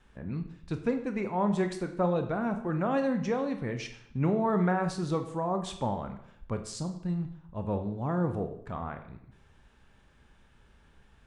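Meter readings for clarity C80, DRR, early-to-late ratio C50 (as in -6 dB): 13.0 dB, 6.5 dB, 10.0 dB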